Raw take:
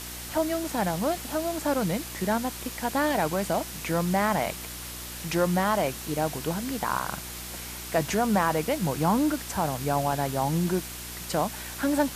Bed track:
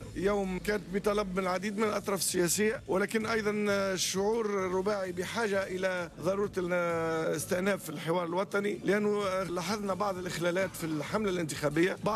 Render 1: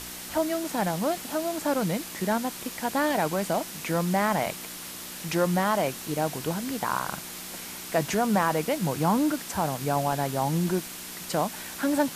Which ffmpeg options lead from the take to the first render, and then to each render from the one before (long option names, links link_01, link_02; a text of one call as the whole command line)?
ffmpeg -i in.wav -af "bandreject=frequency=60:width_type=h:width=4,bandreject=frequency=120:width_type=h:width=4" out.wav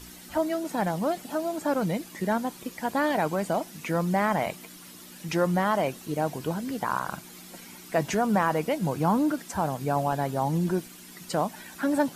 ffmpeg -i in.wav -af "afftdn=noise_reduction=11:noise_floor=-39" out.wav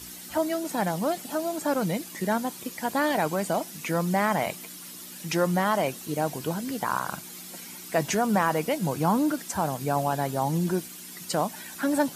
ffmpeg -i in.wav -af "highpass=68,highshelf=frequency=3700:gain=7" out.wav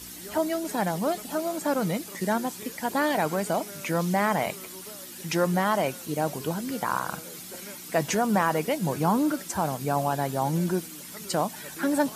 ffmpeg -i in.wav -i bed.wav -filter_complex "[1:a]volume=-16dB[link_01];[0:a][link_01]amix=inputs=2:normalize=0" out.wav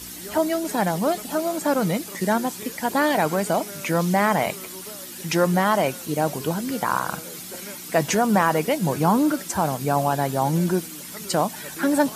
ffmpeg -i in.wav -af "volume=4.5dB" out.wav